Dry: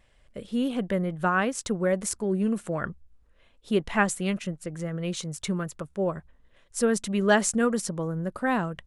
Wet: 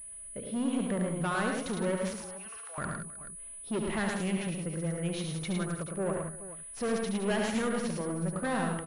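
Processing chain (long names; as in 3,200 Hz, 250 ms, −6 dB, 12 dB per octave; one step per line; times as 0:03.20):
0:02.15–0:02.78: high-pass filter 980 Hz 24 dB per octave
soft clipping −25.5 dBFS, distortion −8 dB
multi-tap delay 71/108/159/177/313/430 ms −6.5/−4/−13/−11/−20/−15 dB
switching amplifier with a slow clock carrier 9,900 Hz
level −2.5 dB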